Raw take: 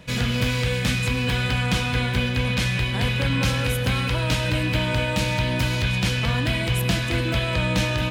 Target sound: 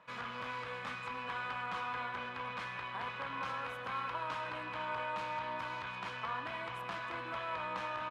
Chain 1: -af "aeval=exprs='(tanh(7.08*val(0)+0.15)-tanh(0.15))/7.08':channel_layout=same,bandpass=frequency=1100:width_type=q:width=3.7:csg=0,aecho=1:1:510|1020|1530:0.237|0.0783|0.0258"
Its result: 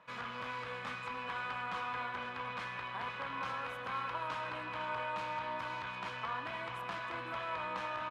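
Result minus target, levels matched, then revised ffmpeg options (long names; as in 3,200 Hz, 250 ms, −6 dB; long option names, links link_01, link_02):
echo-to-direct +6 dB
-af "aeval=exprs='(tanh(7.08*val(0)+0.15)-tanh(0.15))/7.08':channel_layout=same,bandpass=frequency=1100:width_type=q:width=3.7:csg=0,aecho=1:1:510|1020|1530:0.119|0.0392|0.0129"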